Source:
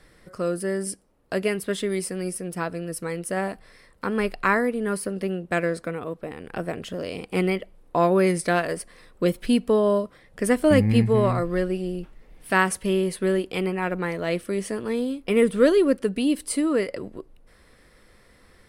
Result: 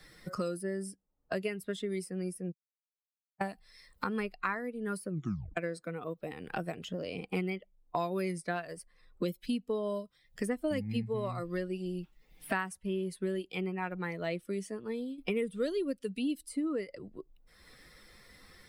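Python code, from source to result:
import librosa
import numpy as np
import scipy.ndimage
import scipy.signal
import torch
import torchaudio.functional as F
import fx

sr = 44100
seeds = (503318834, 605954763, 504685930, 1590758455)

y = fx.edit(x, sr, fx.silence(start_s=2.52, length_s=0.89),
    fx.tape_stop(start_s=5.08, length_s=0.49),
    fx.fade_out_to(start_s=14.51, length_s=0.67, floor_db=-11.0), tone=tone)
y = fx.bin_expand(y, sr, power=1.5)
y = fx.band_squash(y, sr, depth_pct=100)
y = y * 10.0 ** (-8.5 / 20.0)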